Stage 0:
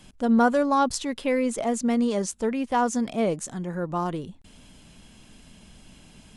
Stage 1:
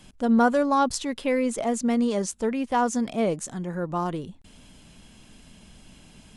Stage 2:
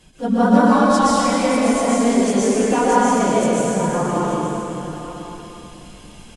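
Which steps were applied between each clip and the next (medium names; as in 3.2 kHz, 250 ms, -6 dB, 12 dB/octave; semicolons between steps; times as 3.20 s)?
no audible change
phase randomisation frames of 50 ms; delay 878 ms -13 dB; plate-style reverb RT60 3.2 s, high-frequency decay 0.95×, pre-delay 110 ms, DRR -8 dB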